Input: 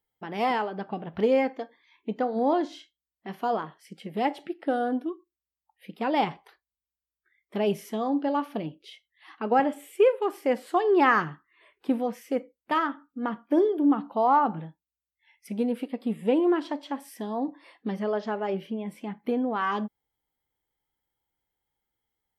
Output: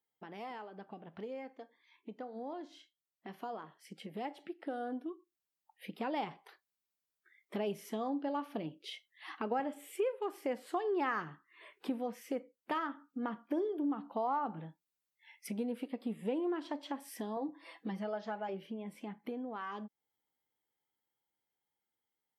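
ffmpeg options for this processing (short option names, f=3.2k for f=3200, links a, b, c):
-filter_complex "[0:a]asettb=1/sr,asplit=3[a][b][c];[a]atrim=end=17.364[d];[b]atrim=start=17.36:end=18.49,asetpts=PTS-STARTPTS,afade=t=in:d=0.004:c=qsin,afade=t=out:st=1.126:d=0.004:c=qsin,aecho=1:1:6.1:0.76,atrim=end_sample=49833[e];[c]atrim=start=18.486[f];[d][e]acrossfade=d=0.004:c1=hsin:c2=qsin[g];[g][f]acrossfade=d=0.004:c1=qsin:c2=hsin,acompressor=threshold=-43dB:ratio=2.5,highpass=150,dynaudnorm=f=840:g=11:m=9dB,volume=-6dB"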